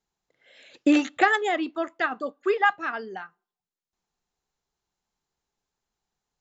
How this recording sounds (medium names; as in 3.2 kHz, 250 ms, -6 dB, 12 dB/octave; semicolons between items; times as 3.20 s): noise floor -93 dBFS; spectral tilt 0.0 dB/octave